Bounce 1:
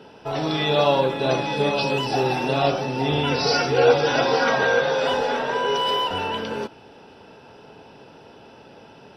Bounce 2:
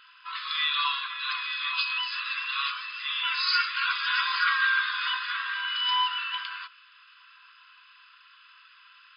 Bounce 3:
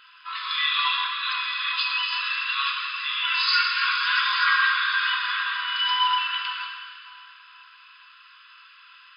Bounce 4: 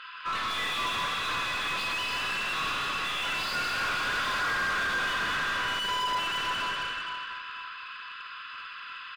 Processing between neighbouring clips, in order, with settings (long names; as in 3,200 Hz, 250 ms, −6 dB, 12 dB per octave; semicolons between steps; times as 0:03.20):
brick-wall band-pass 1,000–5,100 Hz
dense smooth reverb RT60 2.4 s, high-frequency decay 0.9×, DRR 1 dB; level +2 dB
tube saturation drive 28 dB, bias 0.6; loudspeakers that aren't time-aligned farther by 65 metres −7 dB, 85 metres −11 dB; mid-hump overdrive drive 22 dB, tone 1,500 Hz, clips at −20.5 dBFS